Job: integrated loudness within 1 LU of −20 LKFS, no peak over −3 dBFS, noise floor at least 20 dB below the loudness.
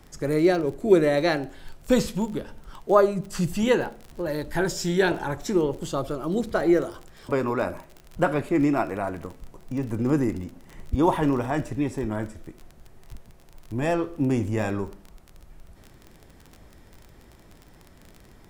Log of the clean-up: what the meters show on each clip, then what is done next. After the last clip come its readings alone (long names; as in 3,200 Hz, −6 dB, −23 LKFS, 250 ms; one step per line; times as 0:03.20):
crackle rate 28 per second; integrated loudness −25.0 LKFS; sample peak −4.5 dBFS; target loudness −20.0 LKFS
→ click removal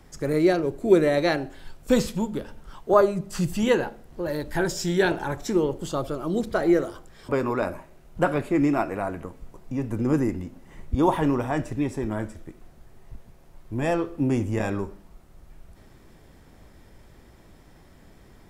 crackle rate 0.16 per second; integrated loudness −25.0 LKFS; sample peak −4.5 dBFS; target loudness −20.0 LKFS
→ level +5 dB
brickwall limiter −3 dBFS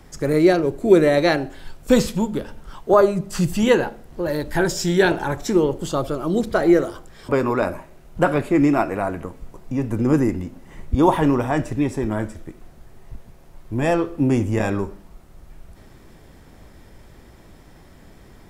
integrated loudness −20.0 LKFS; sample peak −3.0 dBFS; background noise floor −47 dBFS